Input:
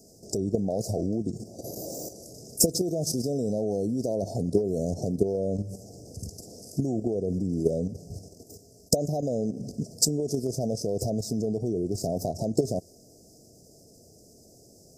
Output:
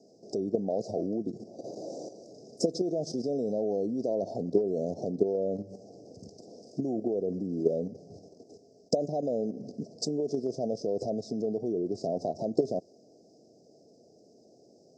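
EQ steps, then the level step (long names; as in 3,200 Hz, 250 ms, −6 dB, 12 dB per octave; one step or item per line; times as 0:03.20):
band-pass filter 250–6,000 Hz
high-frequency loss of the air 150 metres
0.0 dB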